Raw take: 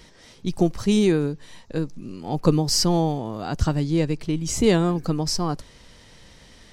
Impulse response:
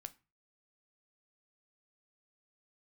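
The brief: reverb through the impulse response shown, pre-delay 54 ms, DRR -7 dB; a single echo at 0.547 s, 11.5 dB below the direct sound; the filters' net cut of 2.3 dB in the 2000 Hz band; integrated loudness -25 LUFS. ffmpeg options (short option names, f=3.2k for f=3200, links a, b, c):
-filter_complex "[0:a]equalizer=f=2k:t=o:g=-3,aecho=1:1:547:0.266,asplit=2[a][b];[1:a]atrim=start_sample=2205,adelay=54[c];[b][c]afir=irnorm=-1:irlink=0,volume=12.5dB[d];[a][d]amix=inputs=2:normalize=0,volume=-10dB"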